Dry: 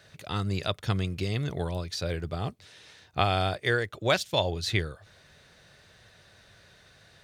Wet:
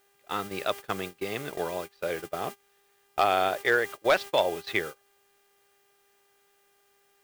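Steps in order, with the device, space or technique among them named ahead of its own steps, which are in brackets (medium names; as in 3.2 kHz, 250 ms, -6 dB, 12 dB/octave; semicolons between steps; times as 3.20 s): aircraft radio (band-pass 380–2500 Hz; hard clipper -18 dBFS, distortion -17 dB; mains buzz 400 Hz, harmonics 8, -51 dBFS -4 dB/octave; white noise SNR 16 dB; gate -39 dBFS, range -23 dB); trim +4.5 dB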